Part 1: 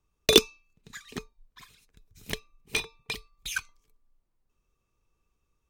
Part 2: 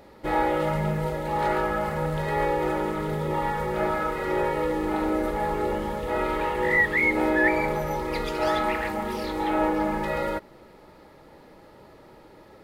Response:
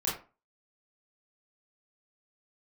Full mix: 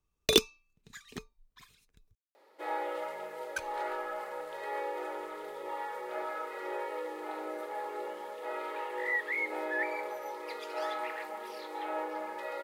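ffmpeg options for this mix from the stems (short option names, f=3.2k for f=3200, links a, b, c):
-filter_complex "[0:a]volume=-5.5dB,asplit=3[a][b][c];[a]atrim=end=2.15,asetpts=PTS-STARTPTS,afade=t=out:st=2.146:d=0.004:c=hsin[d];[b]atrim=start=2.15:end=3.56,asetpts=PTS-STARTPTS,volume=0[e];[c]atrim=start=3.56,asetpts=PTS-STARTPTS,afade=t=in:d=0.004:c=hsin[f];[d][e][f]concat=n=3:v=0:a=1[g];[1:a]highpass=f=400:w=0.5412,highpass=f=400:w=1.3066,adelay=2350,volume=-10.5dB[h];[g][h]amix=inputs=2:normalize=0"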